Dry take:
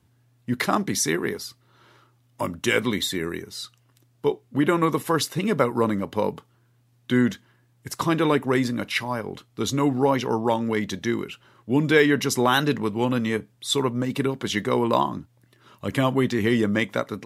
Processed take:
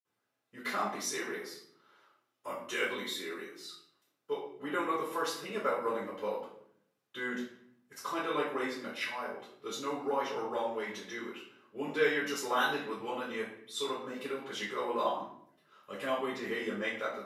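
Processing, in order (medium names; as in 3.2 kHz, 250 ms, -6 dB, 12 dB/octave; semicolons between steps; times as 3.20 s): high-pass 580 Hz 12 dB/octave; reverberation RT60 0.65 s, pre-delay 46 ms, DRR -60 dB; trim +3.5 dB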